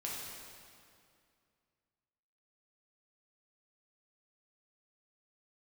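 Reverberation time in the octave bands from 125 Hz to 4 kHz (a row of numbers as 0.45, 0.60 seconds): 2.6, 2.6, 2.4, 2.3, 2.1, 1.9 seconds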